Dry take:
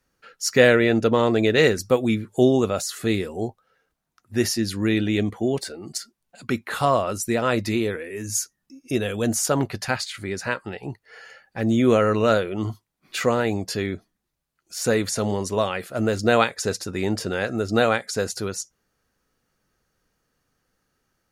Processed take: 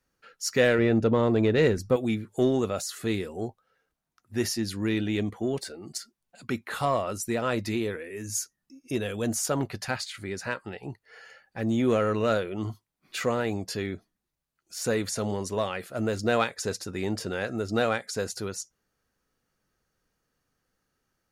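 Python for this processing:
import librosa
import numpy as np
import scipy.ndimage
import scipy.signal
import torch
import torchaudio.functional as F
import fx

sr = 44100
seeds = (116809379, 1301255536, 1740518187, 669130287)

p1 = fx.tilt_eq(x, sr, slope=-2.0, at=(0.78, 1.96))
p2 = 10.0 ** (-16.5 / 20.0) * np.tanh(p1 / 10.0 ** (-16.5 / 20.0))
p3 = p1 + (p2 * librosa.db_to_amplitude(-6.0))
y = p3 * librosa.db_to_amplitude(-8.5)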